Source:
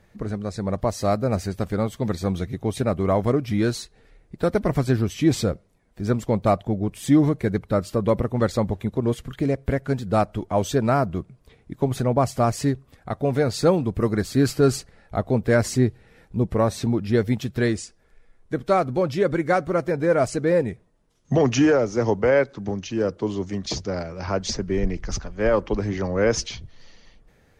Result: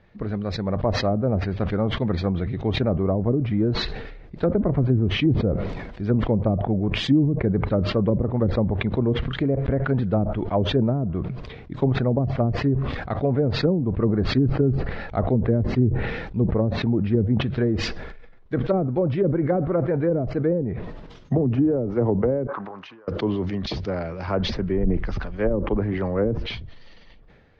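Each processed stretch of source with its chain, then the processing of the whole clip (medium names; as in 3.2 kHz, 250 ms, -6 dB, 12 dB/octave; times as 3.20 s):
22.47–23.08 s: compressor with a negative ratio -27 dBFS, ratio -0.5 + band-pass filter 1.1 kHz, Q 3.8 + loudspeaker Doppler distortion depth 0.2 ms
whole clip: low-pass that closes with the level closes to 310 Hz, closed at -15 dBFS; low-pass 4.2 kHz 24 dB/octave; decay stretcher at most 40 dB/s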